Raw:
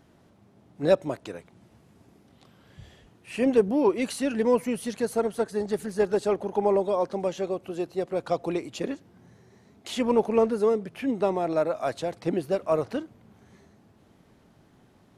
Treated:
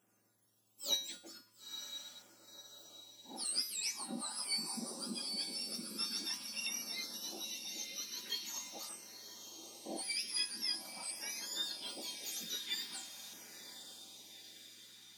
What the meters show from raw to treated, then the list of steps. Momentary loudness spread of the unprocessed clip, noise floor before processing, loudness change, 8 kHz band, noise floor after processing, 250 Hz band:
11 LU, -59 dBFS, -13.0 dB, +5.5 dB, -73 dBFS, -22.5 dB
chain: spectrum mirrored in octaves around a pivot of 1500 Hz; resonator 110 Hz, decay 0.43 s, harmonics odd, mix 80%; diffused feedback echo 0.958 s, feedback 54%, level -8 dB; LFO notch saw down 0.45 Hz 320–4300 Hz; gain +1 dB

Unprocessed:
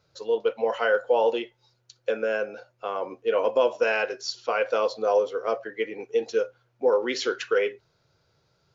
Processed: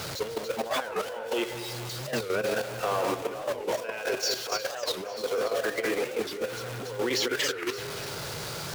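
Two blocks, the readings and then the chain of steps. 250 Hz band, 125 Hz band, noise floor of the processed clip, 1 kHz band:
+1.5 dB, n/a, -37 dBFS, -3.5 dB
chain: zero-crossing step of -30 dBFS; low shelf 100 Hz -8.5 dB; negative-ratio compressor -28 dBFS, ratio -1; on a send: split-band echo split 2900 Hz, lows 0.198 s, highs 0.285 s, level -5.5 dB; on the sum: level quantiser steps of 9 dB; record warp 45 rpm, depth 250 cents

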